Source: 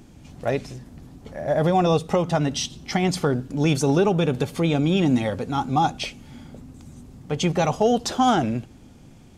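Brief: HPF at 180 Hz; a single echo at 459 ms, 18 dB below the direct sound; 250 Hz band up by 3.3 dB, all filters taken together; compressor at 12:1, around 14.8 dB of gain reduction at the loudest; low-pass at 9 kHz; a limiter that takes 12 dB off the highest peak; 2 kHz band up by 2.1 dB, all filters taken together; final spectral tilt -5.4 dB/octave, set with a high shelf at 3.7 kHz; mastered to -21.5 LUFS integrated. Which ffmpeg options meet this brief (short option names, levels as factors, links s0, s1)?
-af "highpass=180,lowpass=9000,equalizer=f=250:t=o:g=6,equalizer=f=2000:t=o:g=4,highshelf=f=3700:g=-4.5,acompressor=threshold=0.0447:ratio=12,alimiter=level_in=1.41:limit=0.0631:level=0:latency=1,volume=0.708,aecho=1:1:459:0.126,volume=5.96"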